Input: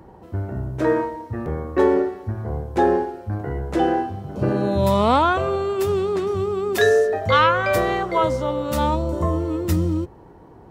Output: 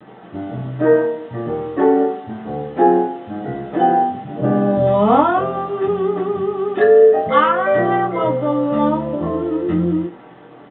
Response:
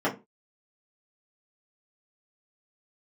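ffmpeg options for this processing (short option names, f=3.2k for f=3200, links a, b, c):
-filter_complex "[0:a]aresample=8000,acrusher=bits=6:mix=0:aa=0.000001,aresample=44100,asplit=2[a][b];[b]adelay=23,volume=-6.5dB[c];[a][c]amix=inputs=2:normalize=0[d];[1:a]atrim=start_sample=2205[e];[d][e]afir=irnorm=-1:irlink=0,volume=-12dB"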